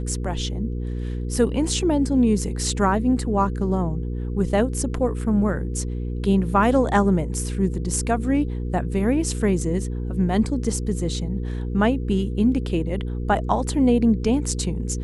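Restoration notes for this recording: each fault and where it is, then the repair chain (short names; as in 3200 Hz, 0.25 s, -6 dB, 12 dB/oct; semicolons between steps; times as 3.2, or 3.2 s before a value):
hum 60 Hz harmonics 8 -27 dBFS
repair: de-hum 60 Hz, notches 8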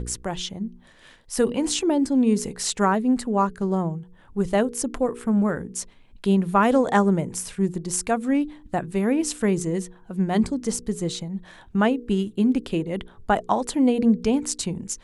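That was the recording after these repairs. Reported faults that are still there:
none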